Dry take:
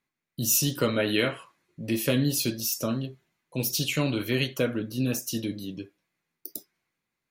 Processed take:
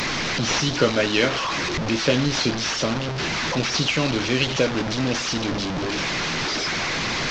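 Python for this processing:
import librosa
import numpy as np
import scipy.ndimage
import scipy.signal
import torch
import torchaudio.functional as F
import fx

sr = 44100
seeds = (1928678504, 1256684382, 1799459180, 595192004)

y = fx.delta_mod(x, sr, bps=32000, step_db=-23.5)
y = fx.hpss(y, sr, part='percussive', gain_db=6)
y = y * 10.0 ** (1.5 / 20.0)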